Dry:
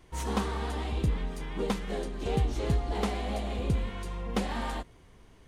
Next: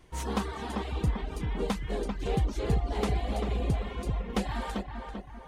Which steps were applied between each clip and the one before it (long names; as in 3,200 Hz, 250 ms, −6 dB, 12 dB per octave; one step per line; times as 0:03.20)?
feedback echo with a low-pass in the loop 392 ms, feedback 49%, low-pass 2,500 Hz, level −5 dB
reverb reduction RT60 0.62 s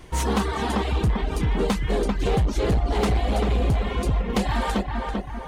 in parallel at +1 dB: downward compressor, threshold −35 dBFS, peak gain reduction 13 dB
on the sum: hard clipping −22.5 dBFS, distortion −14 dB
level +6 dB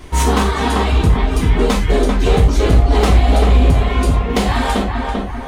reverb whose tail is shaped and stops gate 130 ms falling, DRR 0 dB
level +6 dB